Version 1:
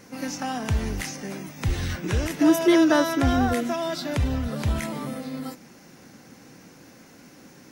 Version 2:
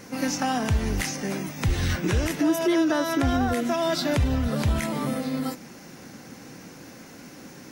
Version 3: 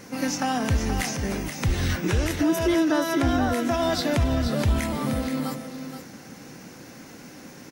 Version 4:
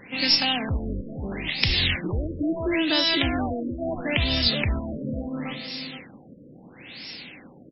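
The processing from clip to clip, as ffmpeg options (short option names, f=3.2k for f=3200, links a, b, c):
-af "alimiter=limit=-19.5dB:level=0:latency=1:release=287,volume=5dB"
-af "aecho=1:1:476:0.376"
-af "aexciter=amount=9.4:drive=4.7:freq=2.1k,aeval=exprs='2*(cos(1*acos(clip(val(0)/2,-1,1)))-cos(1*PI/2))+0.0316*(cos(6*acos(clip(val(0)/2,-1,1)))-cos(6*PI/2))':c=same,afftfilt=real='re*lt(b*sr/1024,600*pow(5600/600,0.5+0.5*sin(2*PI*0.74*pts/sr)))':imag='im*lt(b*sr/1024,600*pow(5600/600,0.5+0.5*sin(2*PI*0.74*pts/sr)))':win_size=1024:overlap=0.75,volume=-3.5dB"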